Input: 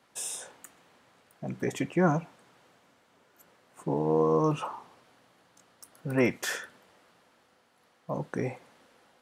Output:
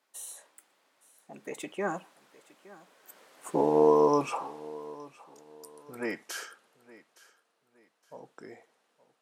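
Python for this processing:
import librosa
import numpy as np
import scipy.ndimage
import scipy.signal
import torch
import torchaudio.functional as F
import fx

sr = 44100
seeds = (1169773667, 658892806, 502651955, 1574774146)

y = fx.doppler_pass(x, sr, speed_mps=33, closest_m=18.0, pass_at_s=3.59)
y = scipy.signal.sosfilt(scipy.signal.butter(2, 320.0, 'highpass', fs=sr, output='sos'), y)
y = fx.high_shelf(y, sr, hz=5300.0, db=5.5)
y = fx.echo_feedback(y, sr, ms=866, feedback_pct=30, wet_db=-20.0)
y = F.gain(torch.from_numpy(y), 6.0).numpy()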